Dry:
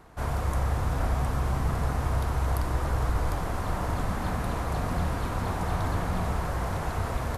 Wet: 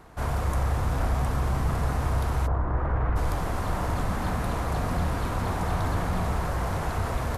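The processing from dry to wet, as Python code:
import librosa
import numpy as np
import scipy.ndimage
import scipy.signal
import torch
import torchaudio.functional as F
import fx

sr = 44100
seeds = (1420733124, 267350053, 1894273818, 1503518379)

p1 = fx.lowpass(x, sr, hz=fx.line((2.46, 1400.0), (3.15, 2400.0)), slope=24, at=(2.46, 3.15), fade=0.02)
p2 = np.clip(p1, -10.0 ** (-29.5 / 20.0), 10.0 ** (-29.5 / 20.0))
y = p1 + F.gain(torch.from_numpy(p2), -10.0).numpy()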